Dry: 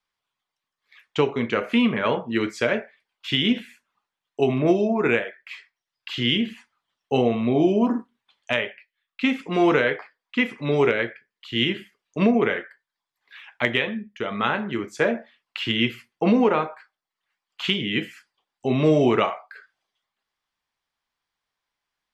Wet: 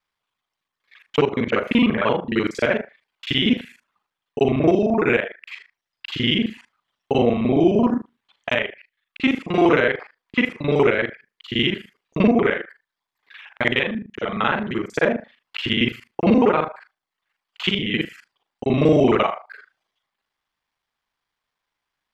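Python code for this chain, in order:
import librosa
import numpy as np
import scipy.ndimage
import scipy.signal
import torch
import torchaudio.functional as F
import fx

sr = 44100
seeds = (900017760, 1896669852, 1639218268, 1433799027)

y = fx.local_reverse(x, sr, ms=38.0)
y = fx.bass_treble(y, sr, bass_db=0, treble_db=-4)
y = F.gain(torch.from_numpy(y), 3.0).numpy()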